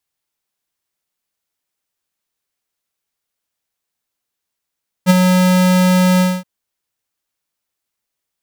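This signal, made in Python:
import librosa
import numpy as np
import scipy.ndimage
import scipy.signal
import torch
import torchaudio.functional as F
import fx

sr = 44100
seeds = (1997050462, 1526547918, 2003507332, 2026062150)

y = fx.adsr_tone(sr, wave='square', hz=183.0, attack_ms=40.0, decay_ms=23.0, sustain_db=-5.0, held_s=1.14, release_ms=235.0, level_db=-6.5)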